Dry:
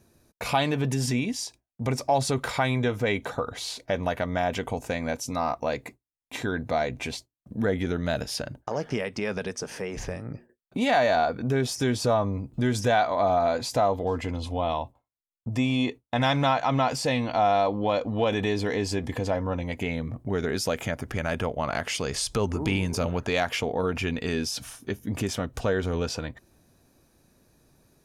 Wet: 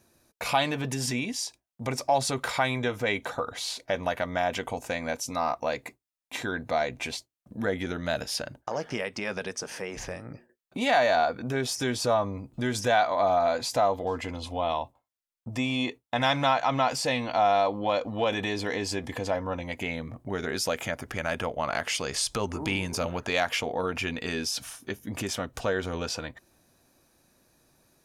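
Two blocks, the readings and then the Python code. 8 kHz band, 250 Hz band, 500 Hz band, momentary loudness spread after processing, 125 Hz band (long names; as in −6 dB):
+1.0 dB, −4.5 dB, −1.5 dB, 11 LU, −6.5 dB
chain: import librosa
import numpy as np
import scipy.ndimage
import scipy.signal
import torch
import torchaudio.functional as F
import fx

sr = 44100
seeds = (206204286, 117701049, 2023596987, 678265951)

y = fx.low_shelf(x, sr, hz=310.0, db=-9.0)
y = fx.notch(y, sr, hz=430.0, q=12.0)
y = y * librosa.db_to_amplitude(1.0)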